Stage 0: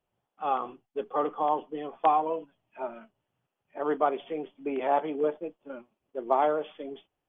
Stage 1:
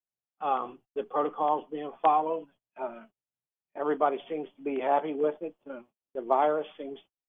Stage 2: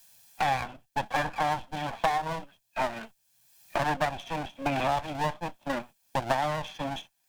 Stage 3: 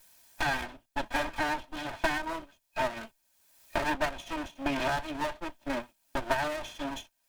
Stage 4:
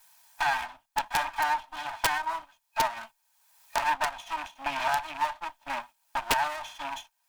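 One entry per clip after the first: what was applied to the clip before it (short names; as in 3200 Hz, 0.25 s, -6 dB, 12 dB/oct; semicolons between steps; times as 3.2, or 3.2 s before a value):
gate -54 dBFS, range -24 dB
minimum comb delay 1.2 ms; high shelf 2400 Hz +10.5 dB; three-band squash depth 100%
minimum comb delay 3.2 ms
rattling part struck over -40 dBFS, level -29 dBFS; resonant low shelf 620 Hz -11 dB, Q 3; wrapped overs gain 16 dB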